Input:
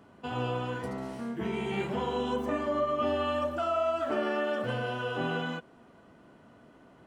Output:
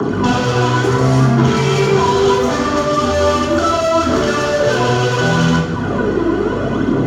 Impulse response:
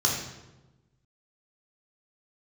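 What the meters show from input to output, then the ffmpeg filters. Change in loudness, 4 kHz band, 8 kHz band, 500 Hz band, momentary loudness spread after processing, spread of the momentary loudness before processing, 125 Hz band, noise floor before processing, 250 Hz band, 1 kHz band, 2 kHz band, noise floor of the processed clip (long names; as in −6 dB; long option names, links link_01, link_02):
+17.0 dB, +19.0 dB, can't be measured, +16.5 dB, 4 LU, 8 LU, +24.0 dB, −57 dBFS, +19.5 dB, +17.0 dB, +17.5 dB, −18 dBFS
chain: -filter_complex "[0:a]lowshelf=frequency=550:width_type=q:width=1.5:gain=11.5,aphaser=in_gain=1:out_gain=1:delay=3.2:decay=0.69:speed=0.72:type=triangular,acrossover=split=170|630|3300[link_01][link_02][link_03][link_04];[link_02]acompressor=threshold=-35dB:ratio=6[link_05];[link_01][link_05][link_03][link_04]amix=inputs=4:normalize=0,aeval=exprs='val(0)+0.00562*(sin(2*PI*50*n/s)+sin(2*PI*2*50*n/s)/2+sin(2*PI*3*50*n/s)/3+sin(2*PI*4*50*n/s)/4+sin(2*PI*5*50*n/s)/5)':channel_layout=same,asplit=2[link_06][link_07];[link_07]highpass=frequency=720:poles=1,volume=32dB,asoftclip=type=tanh:threshold=-10dB[link_08];[link_06][link_08]amix=inputs=2:normalize=0,lowpass=frequency=2900:poles=1,volume=-6dB,acrossover=split=130|570|4900[link_09][link_10][link_11][link_12];[link_09]acompressor=threshold=-40dB:ratio=4[link_13];[link_10]acompressor=threshold=-29dB:ratio=4[link_14];[link_11]acompressor=threshold=-32dB:ratio=4[link_15];[link_12]acompressor=threshold=-42dB:ratio=4[link_16];[link_13][link_14][link_15][link_16]amix=inputs=4:normalize=0[link_17];[1:a]atrim=start_sample=2205,afade=type=out:start_time=0.34:duration=0.01,atrim=end_sample=15435[link_18];[link_17][link_18]afir=irnorm=-1:irlink=0,volume=-1dB"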